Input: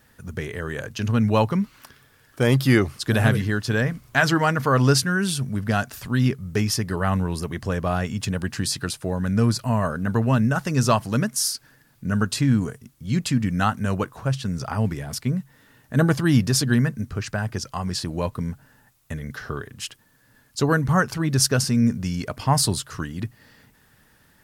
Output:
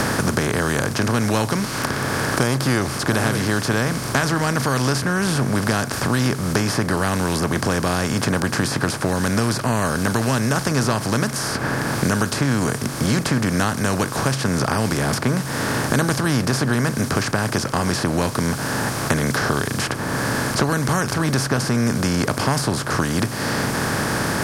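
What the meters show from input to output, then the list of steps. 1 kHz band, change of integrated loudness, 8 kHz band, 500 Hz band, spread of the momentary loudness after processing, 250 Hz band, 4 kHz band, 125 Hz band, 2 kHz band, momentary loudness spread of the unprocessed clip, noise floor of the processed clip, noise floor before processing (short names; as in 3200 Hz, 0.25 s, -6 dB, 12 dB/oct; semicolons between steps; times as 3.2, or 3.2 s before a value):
+4.5 dB, +2.0 dB, +4.0 dB, +3.5 dB, 3 LU, +2.5 dB, +3.5 dB, +1.0 dB, +5.5 dB, 13 LU, -27 dBFS, -59 dBFS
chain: per-bin compression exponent 0.4; three-band squash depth 100%; gain -5.5 dB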